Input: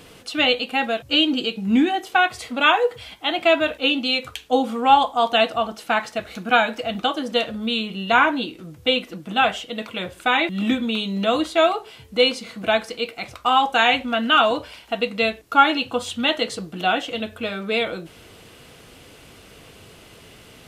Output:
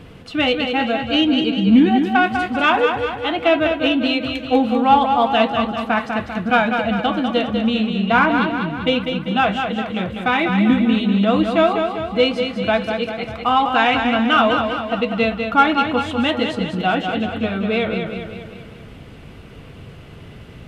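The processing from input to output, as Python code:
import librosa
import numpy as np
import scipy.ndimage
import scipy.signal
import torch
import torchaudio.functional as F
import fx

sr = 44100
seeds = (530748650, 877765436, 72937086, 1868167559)

p1 = fx.bass_treble(x, sr, bass_db=10, treble_db=-14)
p2 = 10.0 ** (-13.5 / 20.0) * np.tanh(p1 / 10.0 ** (-13.5 / 20.0))
p3 = p1 + (p2 * 10.0 ** (-8.5 / 20.0))
p4 = fx.echo_feedback(p3, sr, ms=197, feedback_pct=54, wet_db=-6.0)
y = p4 * 10.0 ** (-1.0 / 20.0)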